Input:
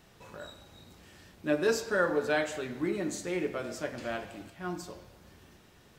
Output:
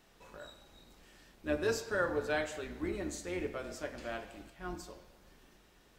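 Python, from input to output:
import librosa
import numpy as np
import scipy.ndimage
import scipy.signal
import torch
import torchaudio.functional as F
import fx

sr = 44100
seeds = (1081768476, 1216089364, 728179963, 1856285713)

y = fx.octave_divider(x, sr, octaves=2, level_db=0.0)
y = fx.peak_eq(y, sr, hz=98.0, db=-9.0, octaves=1.7)
y = y * 10.0 ** (-4.5 / 20.0)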